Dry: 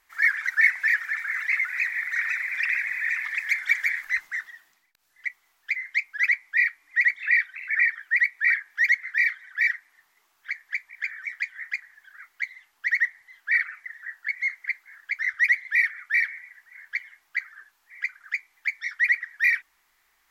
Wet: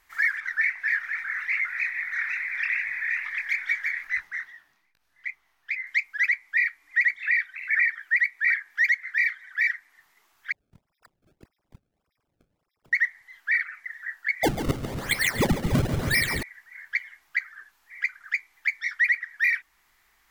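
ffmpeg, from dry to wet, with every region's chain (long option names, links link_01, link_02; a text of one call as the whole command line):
ffmpeg -i in.wav -filter_complex "[0:a]asettb=1/sr,asplit=3[link_01][link_02][link_03];[link_01]atrim=end=0.404[link_04];[link_02]atrim=start=0.4:end=5.87,asetpts=PTS-STARTPTS,afade=type=in:duration=0.004:curve=qsin,afade=type=out:start_time=5.466:duration=0.004:curve=qsin,highshelf=frequency=4700:gain=-8,bandreject=frequency=7400:width=9.6,flanger=delay=19:depth=7.9:speed=2.4[link_05];[link_03]atrim=start=5.866[link_06];[link_04][link_05]acrossfade=duration=0.004:curve1=hsin:curve2=qsin[link_07];[link_07][link_06]acrossfade=duration=0.004:curve1=qsin:curve2=hsin,asettb=1/sr,asplit=3[link_08][link_09][link_10];[link_08]atrim=end=10.524[link_11];[link_09]atrim=start=10.52:end=12.93,asetpts=PTS-STARTPTS,afade=type=in:duration=0.004:curve=qsin,afade=type=out:start_time=2.406:duration=0.004:curve=qsin,asuperpass=centerf=5200:order=12:qfactor=6.7,acrusher=samples=26:mix=1:aa=0.000001:lfo=1:lforange=41.6:lforate=1.7[link_12];[link_10]atrim=start=12.926[link_13];[link_11][link_12]acrossfade=duration=0.004:curve1=hsin:curve2=qsin[link_14];[link_14][link_13]acrossfade=duration=0.004:curve1=qsin:curve2=hsin,asettb=1/sr,asplit=3[link_15][link_16][link_17];[link_15]atrim=end=14.434[link_18];[link_16]atrim=start=14.43:end=16.43,asetpts=PTS-STARTPTS,afade=type=in:duration=0.004:curve=qsin,afade=type=out:start_time=1.996:duration=0.004:curve=qsin,aeval=exprs='val(0)+0.5*0.0211*sgn(val(0))':channel_layout=same,acrusher=samples=30:mix=1:aa=0.000001:lfo=1:lforange=48:lforate=1,aecho=1:1:140|280|420|560|700|840|980:0.355|0.202|0.115|0.0657|0.0375|0.0213|0.0122,atrim=end_sample=88200[link_19];[link_17]atrim=start=16.426[link_20];[link_18][link_19]acrossfade=duration=0.004:curve1=hsin:curve2=qsin[link_21];[link_21][link_20]acrossfade=duration=0.004:curve1=qsin:curve2=hsin,bass=frequency=250:gain=6,treble=frequency=4000:gain=-1,alimiter=limit=-16.5dB:level=0:latency=1:release=397,volume=2.5dB" out.wav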